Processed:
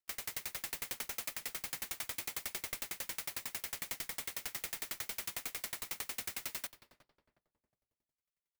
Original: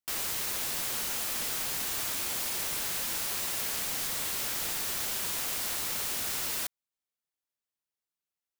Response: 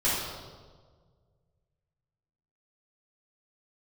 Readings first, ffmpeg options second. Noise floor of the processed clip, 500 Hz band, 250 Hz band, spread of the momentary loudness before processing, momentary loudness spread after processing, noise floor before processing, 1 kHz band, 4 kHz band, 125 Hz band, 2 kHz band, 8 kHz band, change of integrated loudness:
under -85 dBFS, -10.0 dB, -10.5 dB, 0 LU, 1 LU, under -85 dBFS, -9.5 dB, -10.0 dB, -10.0 dB, -6.5 dB, -10.5 dB, -10.0 dB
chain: -filter_complex "[0:a]equalizer=f=2.1k:w=3.3:g=6.5,alimiter=level_in=1dB:limit=-24dB:level=0:latency=1:release=258,volume=-1dB,asplit=2[a][b];[b]adelay=357,lowpass=f=1.1k:p=1,volume=-16dB,asplit=2[c][d];[d]adelay=357,lowpass=f=1.1k:p=1,volume=0.43,asplit=2[e][f];[f]adelay=357,lowpass=f=1.1k:p=1,volume=0.43,asplit=2[g][h];[h]adelay=357,lowpass=f=1.1k:p=1,volume=0.43[i];[a][c][e][g][i]amix=inputs=5:normalize=0,asplit=2[j][k];[1:a]atrim=start_sample=2205,asetrate=42336,aresample=44100,highshelf=f=12k:g=6.5[l];[k][l]afir=irnorm=-1:irlink=0,volume=-24.5dB[m];[j][m]amix=inputs=2:normalize=0,aeval=exprs='val(0)*pow(10,-35*if(lt(mod(11*n/s,1),2*abs(11)/1000),1-mod(11*n/s,1)/(2*abs(11)/1000),(mod(11*n/s,1)-2*abs(11)/1000)/(1-2*abs(11)/1000))/20)':c=same,volume=1.5dB"

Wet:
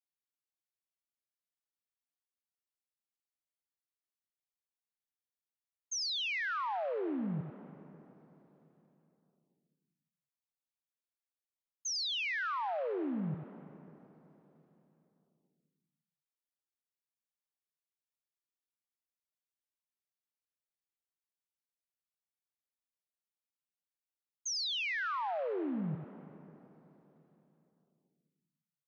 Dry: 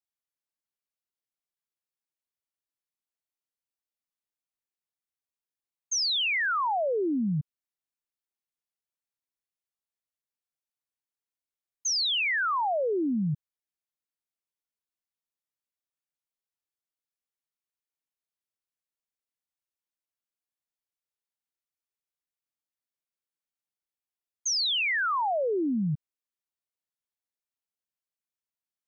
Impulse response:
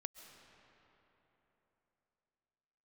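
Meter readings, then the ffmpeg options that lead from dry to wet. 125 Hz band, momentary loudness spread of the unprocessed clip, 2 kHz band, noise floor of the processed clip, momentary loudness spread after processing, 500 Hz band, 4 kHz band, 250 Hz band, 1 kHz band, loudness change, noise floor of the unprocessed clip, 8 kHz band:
-8.0 dB, 9 LU, -8.5 dB, under -85 dBFS, 19 LU, -8.5 dB, -8.5 dB, -8.0 dB, -8.5 dB, -8.5 dB, under -85 dBFS, n/a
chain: -filter_complex "[0:a]asplit=2[a][b];[1:a]atrim=start_sample=2205,highshelf=f=2.9k:g=-7,adelay=91[c];[b][c]afir=irnorm=-1:irlink=0,volume=-3.5dB[d];[a][d]amix=inputs=2:normalize=0,volume=-9dB"

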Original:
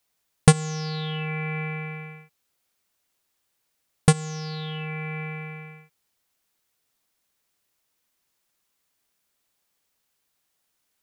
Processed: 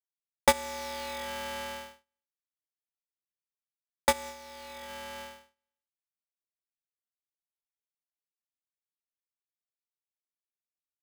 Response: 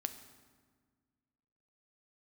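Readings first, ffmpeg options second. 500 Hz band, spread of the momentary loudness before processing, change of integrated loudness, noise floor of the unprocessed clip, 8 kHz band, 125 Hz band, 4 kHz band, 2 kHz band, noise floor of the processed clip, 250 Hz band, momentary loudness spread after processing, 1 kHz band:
-2.5 dB, 18 LU, -6.0 dB, -76 dBFS, -5.5 dB, -28.5 dB, -3.0 dB, -4.0 dB, under -85 dBFS, -16.0 dB, 18 LU, 0.0 dB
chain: -af "agate=range=-43dB:threshold=-32dB:ratio=16:detection=peak,aeval=exprs='val(0)*sgn(sin(2*PI*710*n/s))':c=same,volume=-8dB"

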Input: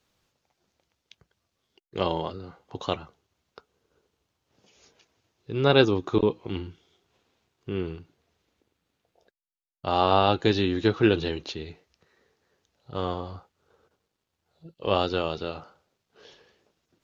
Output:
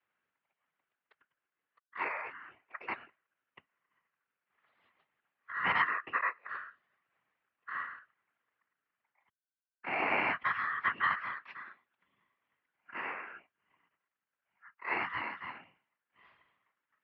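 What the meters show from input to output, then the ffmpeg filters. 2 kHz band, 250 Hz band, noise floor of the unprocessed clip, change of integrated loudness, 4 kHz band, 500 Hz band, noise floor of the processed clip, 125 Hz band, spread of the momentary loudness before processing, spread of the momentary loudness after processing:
+2.5 dB, -22.5 dB, -81 dBFS, -8.5 dB, -16.5 dB, -21.5 dB, under -85 dBFS, -26.5 dB, 19 LU, 19 LU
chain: -af "aeval=exprs='val(0)*sin(2*PI*1600*n/s)':c=same,afftfilt=real='hypot(re,im)*cos(2*PI*random(0))':imag='hypot(re,im)*sin(2*PI*random(1))':win_size=512:overlap=0.75,highpass=f=190:t=q:w=0.5412,highpass=f=190:t=q:w=1.307,lowpass=f=3.1k:t=q:w=0.5176,lowpass=f=3.1k:t=q:w=0.7071,lowpass=f=3.1k:t=q:w=1.932,afreqshift=-80,volume=-1dB"

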